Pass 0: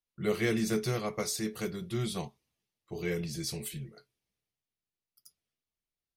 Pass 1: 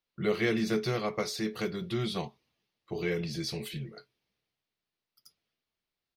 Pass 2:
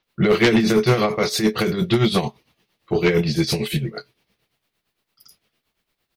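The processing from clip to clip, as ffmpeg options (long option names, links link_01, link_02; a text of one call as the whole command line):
ffmpeg -i in.wav -filter_complex "[0:a]lowshelf=frequency=110:gain=-9,asplit=2[link_01][link_02];[link_02]acompressor=threshold=-41dB:ratio=6,volume=2dB[link_03];[link_01][link_03]amix=inputs=2:normalize=0,firequalizer=gain_entry='entry(4400,0);entry(7600,-14);entry(15000,-10)':delay=0.05:min_phase=1" out.wav
ffmpeg -i in.wav -filter_complex "[0:a]acrossover=split=5500[link_01][link_02];[link_02]adelay=30[link_03];[link_01][link_03]amix=inputs=2:normalize=0,tremolo=f=8.8:d=0.7,aeval=exprs='0.141*sin(PI/2*2.24*val(0)/0.141)':channel_layout=same,volume=7.5dB" out.wav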